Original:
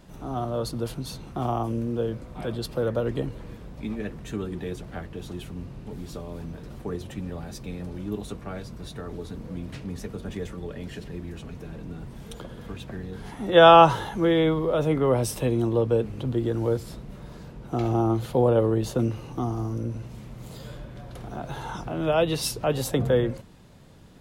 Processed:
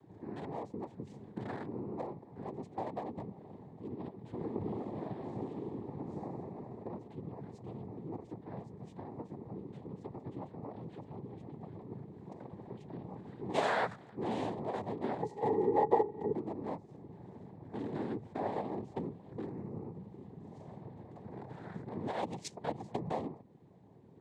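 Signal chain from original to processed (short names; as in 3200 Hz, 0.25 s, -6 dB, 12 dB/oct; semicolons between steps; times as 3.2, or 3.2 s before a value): Wiener smoothing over 41 samples; Bessel high-pass 190 Hz; notch 740 Hz, Q 12; 4.31–6.21 reverb throw, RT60 2.3 s, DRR -8.5 dB; compressor 2:1, threshold -40 dBFS, peak gain reduction 16.5 dB; noise vocoder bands 6; 15.22–16.33 small resonant body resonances 440/840/1900 Hz, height 17 dB, ringing for 45 ms; gain -2 dB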